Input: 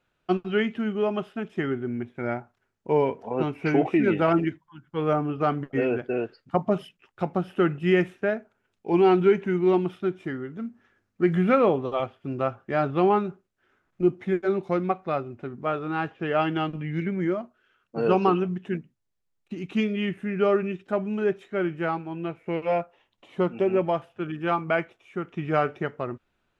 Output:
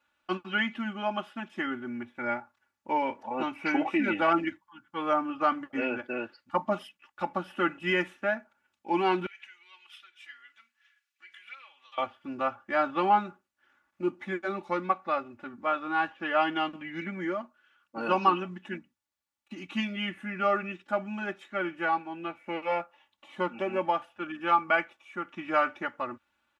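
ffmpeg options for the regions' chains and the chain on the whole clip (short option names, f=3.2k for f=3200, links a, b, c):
-filter_complex "[0:a]asettb=1/sr,asplit=3[a][b][c];[a]atrim=end=9.264[d];[b]atrim=start=9.26:end=11.98,asetpts=PTS-STARTPTS,afade=t=in:d=0.004:c=qsin,afade=t=out:st=2.716:d=0.004:c=qsin,acompressor=threshold=-33dB:ratio=6:attack=3.2:release=140:knee=1:detection=peak,highpass=f=2.6k:t=q:w=1.6[e];[c]atrim=start=11.976[f];[d][e]acrossfade=d=0.004:c1=hsin:c2=qsin[g];[g][f]acrossfade=d=0.004:c1=qsin:c2=hsin,highpass=76,lowshelf=f=670:t=q:w=1.5:g=-7,aecho=1:1:3.5:0.95,volume=-2dB"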